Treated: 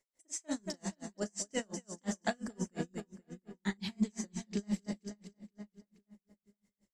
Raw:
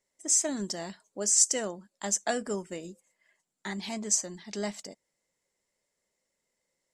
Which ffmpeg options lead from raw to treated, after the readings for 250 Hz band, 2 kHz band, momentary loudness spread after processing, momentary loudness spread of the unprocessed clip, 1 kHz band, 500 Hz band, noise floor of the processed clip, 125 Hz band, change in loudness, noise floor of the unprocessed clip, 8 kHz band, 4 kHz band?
+0.5 dB, −4.5 dB, 16 LU, 19 LU, −6.5 dB, −7.0 dB, below −85 dBFS, +2.0 dB, −11.0 dB, −83 dBFS, −17.5 dB, −9.0 dB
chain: -filter_complex "[0:a]asplit=2[link_01][link_02];[link_02]adelay=476,lowpass=frequency=3600:poles=1,volume=-11dB,asplit=2[link_03][link_04];[link_04]adelay=476,lowpass=frequency=3600:poles=1,volume=0.37,asplit=2[link_05][link_06];[link_06]adelay=476,lowpass=frequency=3600:poles=1,volume=0.37,asplit=2[link_07][link_08];[link_08]adelay=476,lowpass=frequency=3600:poles=1,volume=0.37[link_09];[link_03][link_05][link_07][link_09]amix=inputs=4:normalize=0[link_10];[link_01][link_10]amix=inputs=2:normalize=0,asubboost=boost=6.5:cutoff=220,acrossover=split=3300[link_11][link_12];[link_12]acompressor=threshold=-38dB:ratio=4:attack=1:release=60[link_13];[link_11][link_13]amix=inputs=2:normalize=0,asplit=2[link_14][link_15];[link_15]aecho=0:1:37.9|230.3:0.501|0.398[link_16];[link_14][link_16]amix=inputs=2:normalize=0,aeval=exprs='val(0)*pow(10,-37*(0.5-0.5*cos(2*PI*5.7*n/s))/20)':channel_layout=same"

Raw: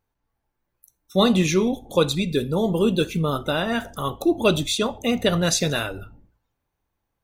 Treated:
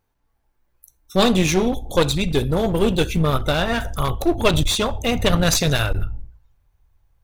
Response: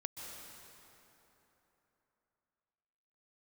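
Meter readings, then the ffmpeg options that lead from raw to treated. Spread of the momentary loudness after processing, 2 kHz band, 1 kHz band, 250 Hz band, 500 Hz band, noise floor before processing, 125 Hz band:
7 LU, +3.5 dB, +3.5 dB, +1.0 dB, +1.5 dB, −79 dBFS, +4.5 dB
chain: -af "asubboost=boost=9.5:cutoff=80,aeval=exprs='clip(val(0),-1,0.0562)':channel_layout=same,volume=5dB"

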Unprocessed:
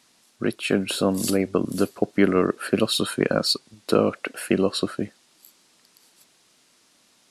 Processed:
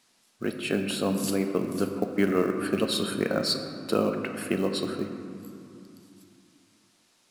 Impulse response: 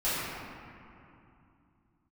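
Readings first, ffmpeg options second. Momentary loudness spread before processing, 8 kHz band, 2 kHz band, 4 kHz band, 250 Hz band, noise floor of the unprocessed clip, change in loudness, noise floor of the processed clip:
9 LU, −5.0 dB, −4.5 dB, −5.0 dB, −4.0 dB, −61 dBFS, −4.5 dB, −66 dBFS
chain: -filter_complex "[0:a]equalizer=frequency=110:width_type=o:width=0.77:gain=-2,acrusher=bits=7:mode=log:mix=0:aa=0.000001,asplit=2[link_01][link_02];[1:a]atrim=start_sample=2205[link_03];[link_02][link_03]afir=irnorm=-1:irlink=0,volume=-15dB[link_04];[link_01][link_04]amix=inputs=2:normalize=0,volume=-6.5dB"

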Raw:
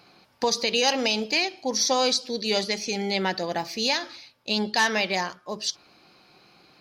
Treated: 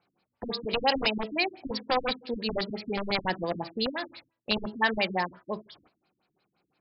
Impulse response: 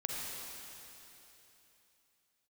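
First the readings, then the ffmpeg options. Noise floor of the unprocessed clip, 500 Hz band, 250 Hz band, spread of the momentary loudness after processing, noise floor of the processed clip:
−61 dBFS, −4.5 dB, −3.0 dB, 12 LU, −82 dBFS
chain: -filter_complex "[0:a]agate=range=-17dB:threshold=-46dB:ratio=16:detection=peak,acrossover=split=550|2400[link_01][link_02][link_03];[link_01]aeval=exprs='(mod(16.8*val(0)+1,2)-1)/16.8':channel_layout=same[link_04];[link_04][link_02][link_03]amix=inputs=3:normalize=0,bandreject=frequency=327.7:width_type=h:width=4,bandreject=frequency=655.4:width_type=h:width=4,bandreject=frequency=983.1:width_type=h:width=4,bandreject=frequency=1310.8:width_type=h:width=4,bandreject=frequency=1638.5:width_type=h:width=4,bandreject=frequency=1966.2:width_type=h:width=4,afftfilt=real='re*lt(b*sr/1024,300*pow(5600/300,0.5+0.5*sin(2*PI*5.8*pts/sr)))':imag='im*lt(b*sr/1024,300*pow(5600/300,0.5+0.5*sin(2*PI*5.8*pts/sr)))':win_size=1024:overlap=0.75"

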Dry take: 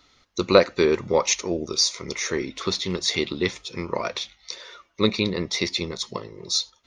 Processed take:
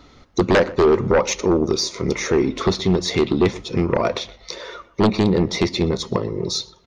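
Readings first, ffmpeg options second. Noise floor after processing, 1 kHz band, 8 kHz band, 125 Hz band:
−52 dBFS, +5.5 dB, −2.0 dB, +10.0 dB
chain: -filter_complex "[0:a]acompressor=threshold=-33dB:ratio=1.5,tiltshelf=frequency=1200:gain=7.5,aeval=exprs='0.501*sin(PI/2*3.16*val(0)/0.501)':channel_layout=same,asplit=2[link_01][link_02];[link_02]adelay=122,lowpass=frequency=2200:poles=1,volume=-19dB,asplit=2[link_03][link_04];[link_04]adelay=122,lowpass=frequency=2200:poles=1,volume=0.34,asplit=2[link_05][link_06];[link_06]adelay=122,lowpass=frequency=2200:poles=1,volume=0.34[link_07];[link_03][link_05][link_07]amix=inputs=3:normalize=0[link_08];[link_01][link_08]amix=inputs=2:normalize=0,volume=-4dB"

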